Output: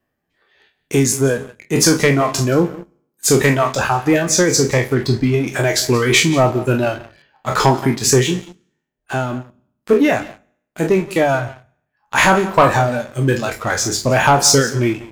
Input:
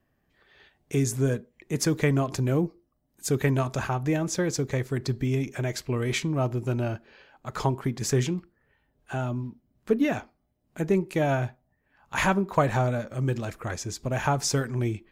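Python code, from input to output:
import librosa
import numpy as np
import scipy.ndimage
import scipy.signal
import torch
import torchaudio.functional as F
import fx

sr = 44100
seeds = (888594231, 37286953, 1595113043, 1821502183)

y = fx.spec_trails(x, sr, decay_s=0.72)
y = fx.high_shelf(y, sr, hz=2700.0, db=-9.5, at=(4.94, 5.47))
y = fx.dereverb_blind(y, sr, rt60_s=1.4)
y = fx.low_shelf(y, sr, hz=120.0, db=-9.0)
y = y + 10.0 ** (-18.0 / 20.0) * np.pad(y, (int(176 * sr / 1000.0), 0))[:len(y)]
y = fx.rider(y, sr, range_db=4, speed_s=2.0)
y = fx.leveller(y, sr, passes=2)
y = fx.hum_notches(y, sr, base_hz=50, count=4)
y = y * 10.0 ** (5.5 / 20.0)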